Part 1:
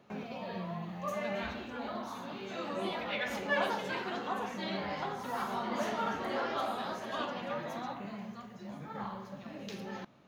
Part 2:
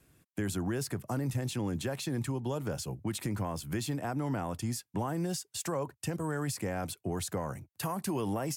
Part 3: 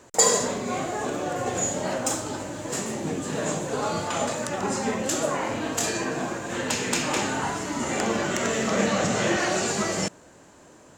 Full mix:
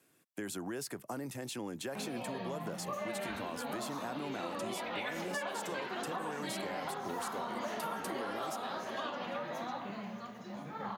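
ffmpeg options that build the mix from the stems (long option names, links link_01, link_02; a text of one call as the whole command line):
ffmpeg -i stem1.wav -i stem2.wav -filter_complex "[0:a]lowshelf=frequency=130:gain=-10,adelay=1850,volume=2dB,asplit=2[link_01][link_02];[link_02]volume=-18.5dB[link_03];[1:a]highpass=270,volume=-2dB[link_04];[link_03]aecho=0:1:799:1[link_05];[link_01][link_04][link_05]amix=inputs=3:normalize=0,acompressor=threshold=-35dB:ratio=6" out.wav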